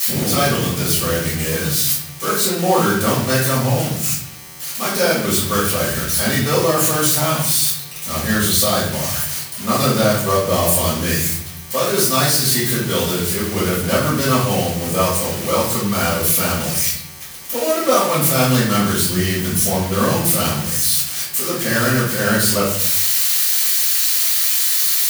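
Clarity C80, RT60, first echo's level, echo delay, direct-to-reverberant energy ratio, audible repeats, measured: 7.0 dB, 0.70 s, no echo, no echo, -9.0 dB, no echo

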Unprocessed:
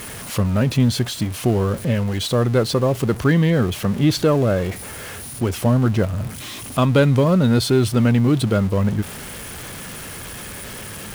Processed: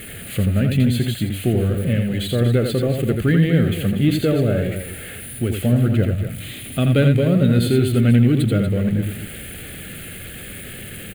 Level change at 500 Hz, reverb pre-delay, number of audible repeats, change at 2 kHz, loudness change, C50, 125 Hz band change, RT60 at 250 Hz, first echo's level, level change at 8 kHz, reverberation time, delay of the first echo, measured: -1.5 dB, no reverb, 2, -1.0 dB, +0.5 dB, no reverb, +1.5 dB, no reverb, -5.5 dB, -3.5 dB, no reverb, 84 ms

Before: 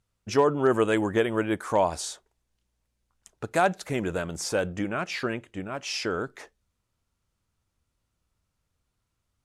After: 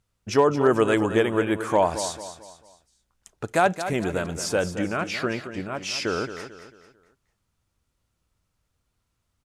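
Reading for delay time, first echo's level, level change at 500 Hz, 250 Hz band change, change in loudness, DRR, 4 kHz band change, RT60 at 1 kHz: 222 ms, -11.0 dB, +3.0 dB, +3.0 dB, +3.0 dB, no reverb, +3.0 dB, no reverb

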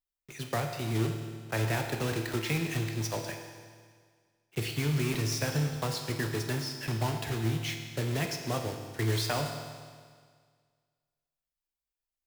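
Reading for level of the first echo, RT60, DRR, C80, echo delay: no echo, 1.8 s, 3.5 dB, 7.0 dB, no echo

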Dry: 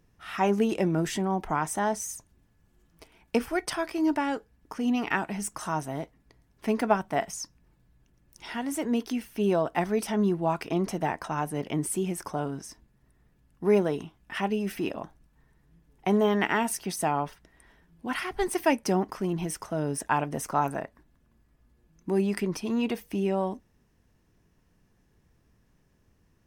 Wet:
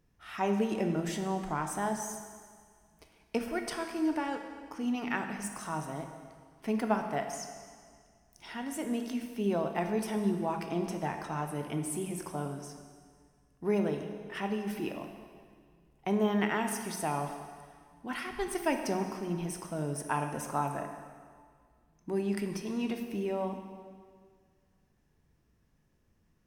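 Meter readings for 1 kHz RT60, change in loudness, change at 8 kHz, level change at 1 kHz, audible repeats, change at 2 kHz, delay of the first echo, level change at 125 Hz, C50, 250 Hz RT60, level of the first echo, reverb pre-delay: 1.9 s, -5.0 dB, -5.5 dB, -5.5 dB, no echo, -5.5 dB, no echo, -4.5 dB, 6.5 dB, 1.9 s, no echo, 6 ms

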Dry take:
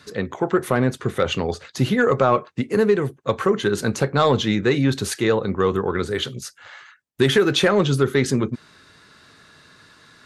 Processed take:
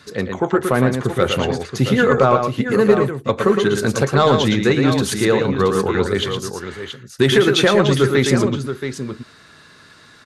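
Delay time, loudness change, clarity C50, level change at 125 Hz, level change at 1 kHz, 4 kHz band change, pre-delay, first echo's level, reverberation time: 113 ms, +3.5 dB, no reverb, +4.0 dB, +4.0 dB, +4.0 dB, no reverb, -6.0 dB, no reverb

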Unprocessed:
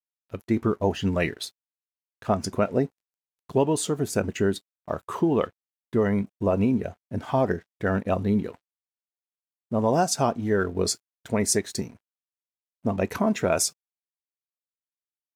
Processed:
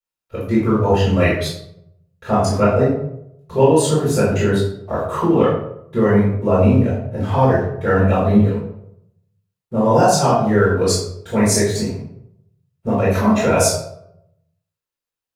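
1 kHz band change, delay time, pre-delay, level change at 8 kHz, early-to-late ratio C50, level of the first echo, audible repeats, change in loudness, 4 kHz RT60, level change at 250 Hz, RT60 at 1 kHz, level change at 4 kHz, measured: +9.5 dB, no echo, 3 ms, +5.5 dB, 1.0 dB, no echo, no echo, +9.0 dB, 0.45 s, +8.5 dB, 0.70 s, +7.0 dB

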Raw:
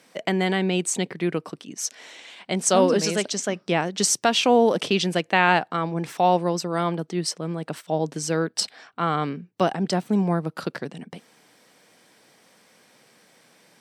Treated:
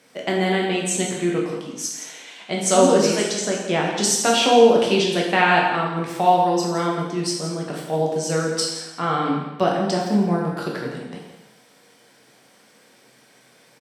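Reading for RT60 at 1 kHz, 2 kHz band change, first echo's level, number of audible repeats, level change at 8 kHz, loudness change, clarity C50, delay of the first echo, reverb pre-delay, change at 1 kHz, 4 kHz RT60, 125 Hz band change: 0.95 s, +2.5 dB, -11.0 dB, 1, +2.5 dB, +3.0 dB, 2.5 dB, 167 ms, 6 ms, +3.5 dB, 0.90 s, +1.0 dB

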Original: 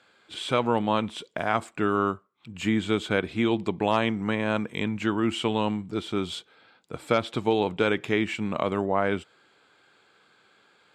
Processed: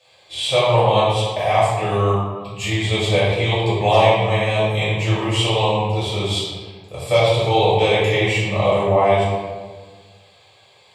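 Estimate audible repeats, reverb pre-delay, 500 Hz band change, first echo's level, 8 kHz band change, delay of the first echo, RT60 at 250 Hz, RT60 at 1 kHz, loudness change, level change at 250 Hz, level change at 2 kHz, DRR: no echo, 3 ms, +10.0 dB, no echo, +12.5 dB, no echo, 1.8 s, 1.4 s, +8.5 dB, 0.0 dB, +7.5 dB, -10.0 dB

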